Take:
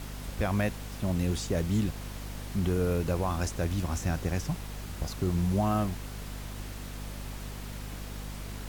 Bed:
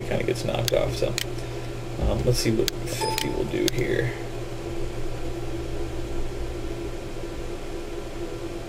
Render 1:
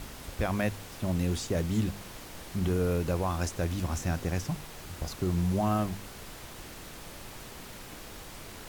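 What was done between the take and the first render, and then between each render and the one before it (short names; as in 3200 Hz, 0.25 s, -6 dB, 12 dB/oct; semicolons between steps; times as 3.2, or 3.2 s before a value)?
de-hum 50 Hz, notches 5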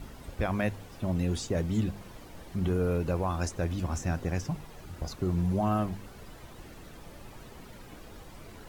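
denoiser 10 dB, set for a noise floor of -46 dBFS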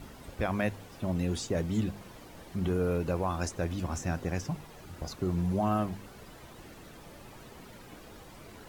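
low shelf 67 Hz -9 dB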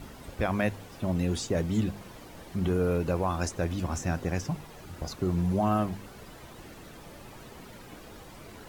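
gain +2.5 dB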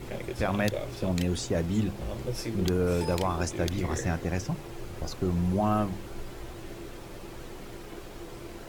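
add bed -11.5 dB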